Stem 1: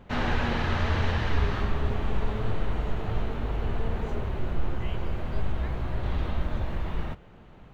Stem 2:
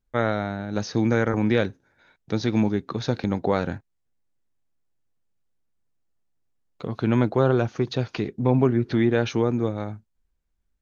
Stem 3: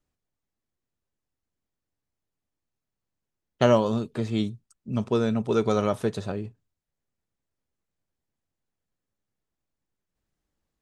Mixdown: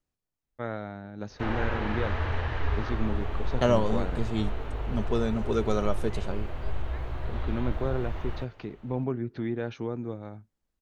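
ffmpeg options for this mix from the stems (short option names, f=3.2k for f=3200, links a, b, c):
-filter_complex "[0:a]acrossover=split=2800[a][b];[b]acompressor=threshold=-52dB:ratio=4:attack=1:release=60[c];[a][c]amix=inputs=2:normalize=0,equalizer=f=190:t=o:w=0.6:g=-13.5,adelay=1300,volume=-2.5dB[d];[1:a]lowpass=f=2.4k:p=1,adelay=450,volume=-10.5dB[e];[2:a]volume=-4dB[f];[d][e][f]amix=inputs=3:normalize=0"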